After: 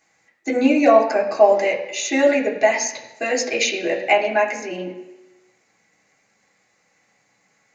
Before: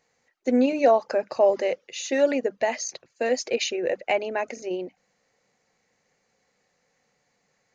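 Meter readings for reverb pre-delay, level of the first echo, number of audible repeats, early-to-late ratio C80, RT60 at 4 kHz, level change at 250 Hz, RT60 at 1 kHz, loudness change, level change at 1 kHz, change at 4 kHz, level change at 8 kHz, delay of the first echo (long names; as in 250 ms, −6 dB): 3 ms, no echo audible, no echo audible, 10.5 dB, 1.0 s, +5.5 dB, 1.1 s, +6.0 dB, +7.5 dB, +6.0 dB, can't be measured, no echo audible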